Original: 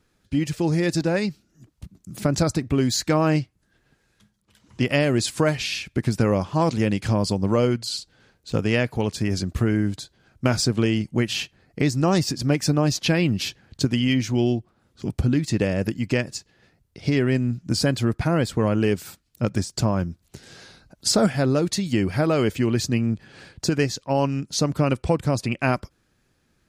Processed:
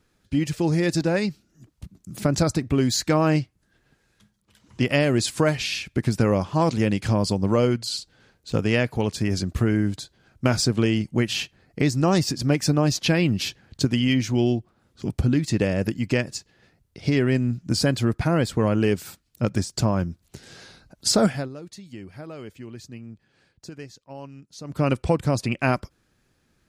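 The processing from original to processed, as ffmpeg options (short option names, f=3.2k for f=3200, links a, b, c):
-filter_complex "[0:a]asplit=3[a][b][c];[a]atrim=end=21.49,asetpts=PTS-STARTPTS,afade=t=out:st=21.27:d=0.22:silence=0.133352[d];[b]atrim=start=21.49:end=24.64,asetpts=PTS-STARTPTS,volume=-17.5dB[e];[c]atrim=start=24.64,asetpts=PTS-STARTPTS,afade=t=in:d=0.22:silence=0.133352[f];[d][e][f]concat=n=3:v=0:a=1"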